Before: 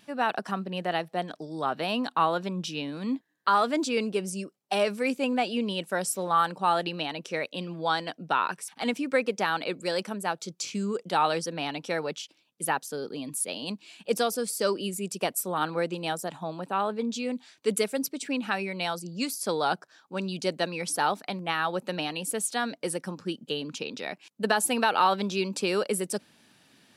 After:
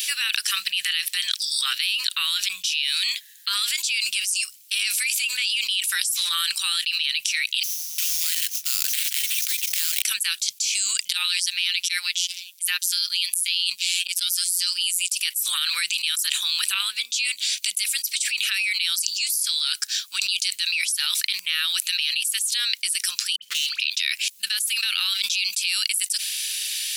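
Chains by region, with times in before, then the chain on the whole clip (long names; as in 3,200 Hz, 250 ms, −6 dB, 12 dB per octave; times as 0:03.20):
0:07.63–0:10.02: multiband delay without the direct sound lows, highs 350 ms, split 210 Hz + sample-rate reduction 6,000 Hz, jitter 20%
0:11.06–0:15.11: downward compressor 2 to 1, threshold −36 dBFS + phases set to zero 178 Hz + volume swells 116 ms
0:16.74–0:17.79: notch filter 1,800 Hz, Q 13 + downward compressor 1.5 to 1, threshold −47 dBFS
0:23.36–0:23.80: high-shelf EQ 9,200 Hz −12 dB + all-pass dispersion highs, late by 65 ms, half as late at 1,700 Hz + hard clipping −32.5 dBFS
whole clip: inverse Chebyshev high-pass filter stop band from 740 Hz, stop band 60 dB; high-shelf EQ 7,200 Hz +10.5 dB; envelope flattener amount 100%; level −7.5 dB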